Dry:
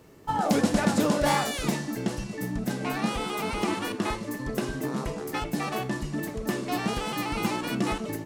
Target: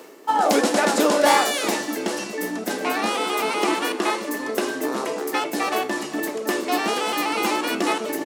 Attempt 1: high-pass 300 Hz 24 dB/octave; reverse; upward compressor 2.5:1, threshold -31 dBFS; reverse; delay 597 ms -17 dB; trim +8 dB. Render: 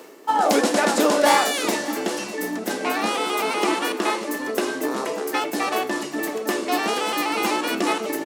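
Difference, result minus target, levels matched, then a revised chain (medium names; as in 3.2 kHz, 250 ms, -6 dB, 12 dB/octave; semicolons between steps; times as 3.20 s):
echo 226 ms late
high-pass 300 Hz 24 dB/octave; reverse; upward compressor 2.5:1, threshold -31 dBFS; reverse; delay 371 ms -17 dB; trim +8 dB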